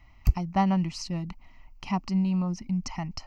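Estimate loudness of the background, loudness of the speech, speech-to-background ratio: -30.5 LUFS, -29.0 LUFS, 1.5 dB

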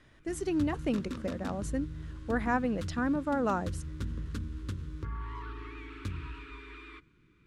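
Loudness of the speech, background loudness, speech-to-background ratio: -33.0 LUFS, -41.0 LUFS, 8.0 dB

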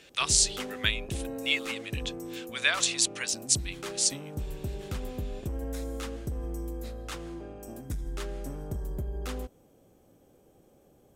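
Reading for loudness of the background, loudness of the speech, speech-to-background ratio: -38.0 LUFS, -27.5 LUFS, 10.5 dB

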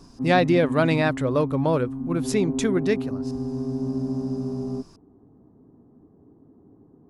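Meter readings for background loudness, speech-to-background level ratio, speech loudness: -29.5 LUFS, 6.5 dB, -23.0 LUFS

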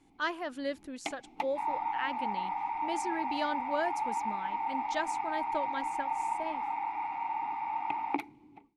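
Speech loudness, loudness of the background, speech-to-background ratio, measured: -38.5 LUFS, -34.5 LUFS, -4.0 dB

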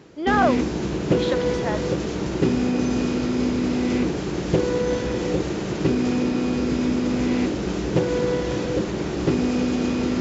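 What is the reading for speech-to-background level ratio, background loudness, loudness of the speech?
-2.5 dB, -23.5 LUFS, -26.0 LUFS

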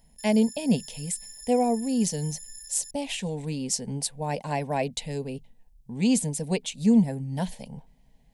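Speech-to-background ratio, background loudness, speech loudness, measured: 14.5 dB, -41.5 LUFS, -27.0 LUFS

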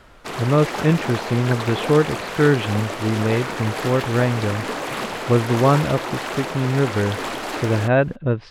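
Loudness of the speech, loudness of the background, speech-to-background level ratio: -21.0 LUFS, -27.5 LUFS, 6.5 dB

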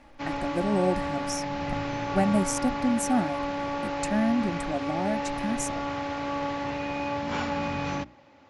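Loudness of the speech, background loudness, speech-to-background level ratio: -29.0 LUFS, -31.0 LUFS, 2.0 dB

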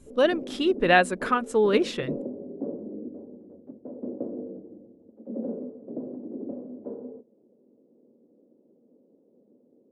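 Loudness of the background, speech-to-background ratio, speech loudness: -37.5 LUFS, 14.0 dB, -23.5 LUFS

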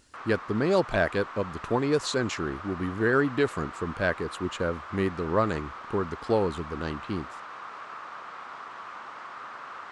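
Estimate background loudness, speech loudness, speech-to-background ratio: -40.5 LUFS, -28.5 LUFS, 12.0 dB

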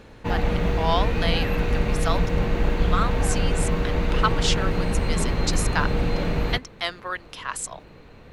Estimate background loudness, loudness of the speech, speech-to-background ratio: -25.0 LUFS, -29.5 LUFS, -4.5 dB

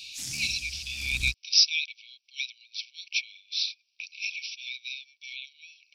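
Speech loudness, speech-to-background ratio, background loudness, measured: -28.5 LUFS, 8.5 dB, -37.0 LUFS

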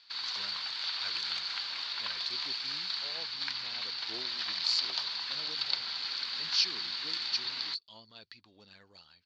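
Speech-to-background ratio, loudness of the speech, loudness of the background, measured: -3.0 dB, -36.0 LUFS, -33.0 LUFS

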